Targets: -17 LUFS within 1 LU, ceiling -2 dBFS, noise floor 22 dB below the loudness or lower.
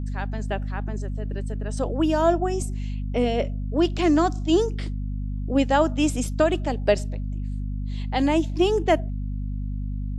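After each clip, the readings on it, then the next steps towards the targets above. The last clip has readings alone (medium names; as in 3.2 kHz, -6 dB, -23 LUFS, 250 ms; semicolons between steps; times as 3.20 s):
hum 50 Hz; highest harmonic 250 Hz; hum level -26 dBFS; loudness -24.5 LUFS; peak level -6.0 dBFS; loudness target -17.0 LUFS
-> de-hum 50 Hz, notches 5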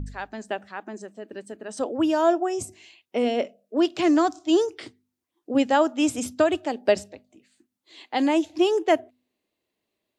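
hum not found; loudness -24.0 LUFS; peak level -7.0 dBFS; loudness target -17.0 LUFS
-> trim +7 dB; peak limiter -2 dBFS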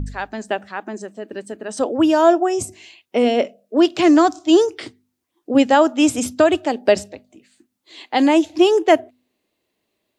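loudness -17.0 LUFS; peak level -2.0 dBFS; noise floor -75 dBFS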